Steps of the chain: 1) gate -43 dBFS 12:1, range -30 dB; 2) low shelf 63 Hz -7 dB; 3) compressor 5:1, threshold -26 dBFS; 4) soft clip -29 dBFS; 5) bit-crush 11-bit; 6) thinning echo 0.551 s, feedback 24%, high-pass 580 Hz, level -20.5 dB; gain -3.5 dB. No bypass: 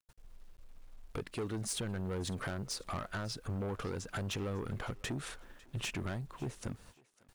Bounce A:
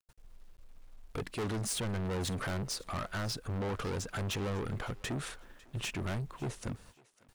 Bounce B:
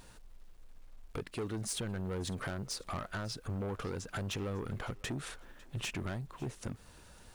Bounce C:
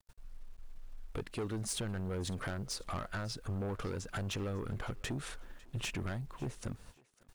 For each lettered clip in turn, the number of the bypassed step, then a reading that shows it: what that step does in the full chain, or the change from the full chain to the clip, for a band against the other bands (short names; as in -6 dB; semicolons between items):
3, crest factor change -2.5 dB; 1, momentary loudness spread change +1 LU; 2, momentary loudness spread change +6 LU